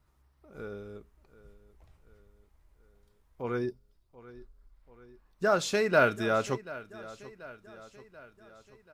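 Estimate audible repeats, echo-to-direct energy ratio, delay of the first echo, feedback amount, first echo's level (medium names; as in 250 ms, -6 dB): 4, -16.5 dB, 735 ms, 55%, -18.0 dB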